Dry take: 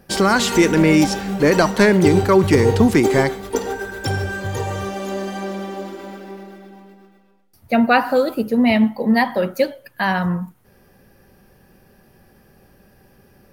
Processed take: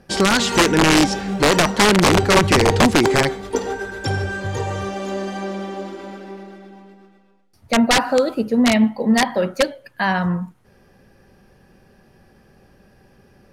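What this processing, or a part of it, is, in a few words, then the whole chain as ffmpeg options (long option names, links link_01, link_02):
overflowing digital effects unit: -af "aeval=exprs='(mod(2.24*val(0)+1,2)-1)/2.24':channel_layout=same,lowpass=8100"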